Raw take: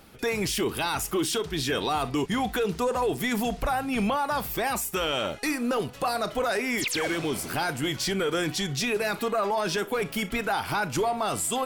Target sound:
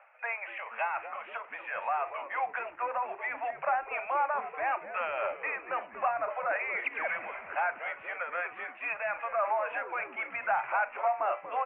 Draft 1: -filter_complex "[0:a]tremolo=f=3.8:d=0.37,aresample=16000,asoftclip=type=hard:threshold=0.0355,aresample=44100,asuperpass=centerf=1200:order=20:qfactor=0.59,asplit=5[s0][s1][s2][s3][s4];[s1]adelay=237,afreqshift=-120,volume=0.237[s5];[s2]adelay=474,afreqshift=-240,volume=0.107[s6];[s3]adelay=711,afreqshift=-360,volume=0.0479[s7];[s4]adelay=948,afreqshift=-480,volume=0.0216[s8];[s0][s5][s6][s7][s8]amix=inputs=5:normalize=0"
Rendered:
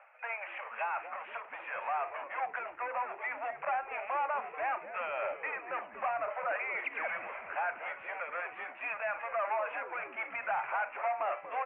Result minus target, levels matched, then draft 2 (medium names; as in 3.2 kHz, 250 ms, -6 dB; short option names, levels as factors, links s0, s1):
hard clipper: distortion +15 dB
-filter_complex "[0:a]tremolo=f=3.8:d=0.37,aresample=16000,asoftclip=type=hard:threshold=0.0794,aresample=44100,asuperpass=centerf=1200:order=20:qfactor=0.59,asplit=5[s0][s1][s2][s3][s4];[s1]adelay=237,afreqshift=-120,volume=0.237[s5];[s2]adelay=474,afreqshift=-240,volume=0.107[s6];[s3]adelay=711,afreqshift=-360,volume=0.0479[s7];[s4]adelay=948,afreqshift=-480,volume=0.0216[s8];[s0][s5][s6][s7][s8]amix=inputs=5:normalize=0"